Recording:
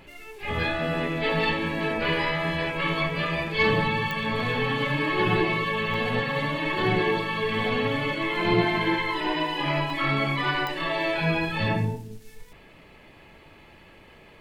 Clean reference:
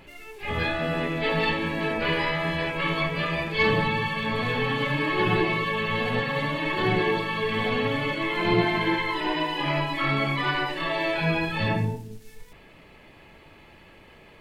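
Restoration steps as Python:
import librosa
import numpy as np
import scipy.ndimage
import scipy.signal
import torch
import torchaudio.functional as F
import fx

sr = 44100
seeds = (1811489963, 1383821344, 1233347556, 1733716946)

y = fx.fix_declick_ar(x, sr, threshold=10.0)
y = fx.fix_interpolate(y, sr, at_s=(4.4, 5.94, 9.9), length_ms=2.8)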